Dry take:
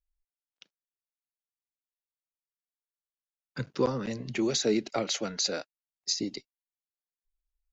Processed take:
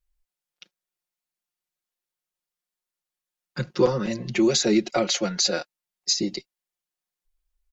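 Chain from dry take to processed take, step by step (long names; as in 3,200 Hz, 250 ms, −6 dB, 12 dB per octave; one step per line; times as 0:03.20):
comb filter 5.6 ms, depth 80%
tape wow and flutter 19 cents
level +4.5 dB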